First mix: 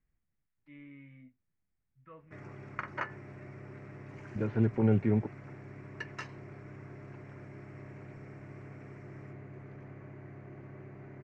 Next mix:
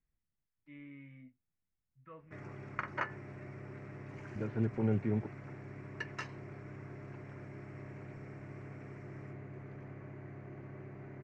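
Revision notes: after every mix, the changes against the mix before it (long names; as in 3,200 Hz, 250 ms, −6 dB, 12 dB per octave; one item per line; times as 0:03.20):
second voice −5.5 dB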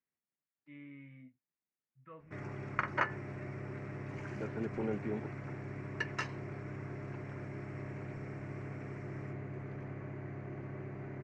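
second voice: add high-pass filter 290 Hz 12 dB per octave
background +4.5 dB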